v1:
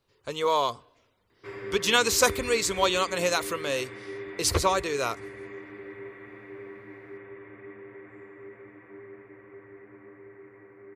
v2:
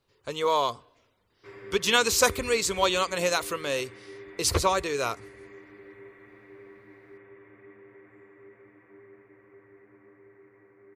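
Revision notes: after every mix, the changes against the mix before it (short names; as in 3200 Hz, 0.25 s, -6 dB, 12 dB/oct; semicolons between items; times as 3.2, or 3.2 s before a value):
background -6.5 dB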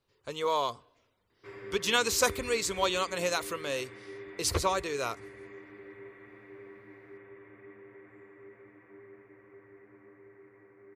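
speech -4.5 dB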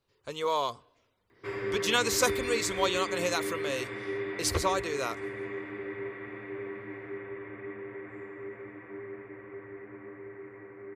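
background +10.5 dB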